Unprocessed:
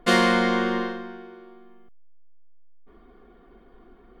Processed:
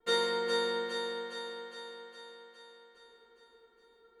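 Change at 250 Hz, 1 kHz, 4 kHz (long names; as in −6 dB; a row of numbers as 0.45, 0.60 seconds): −21.5, −11.5, −4.0 decibels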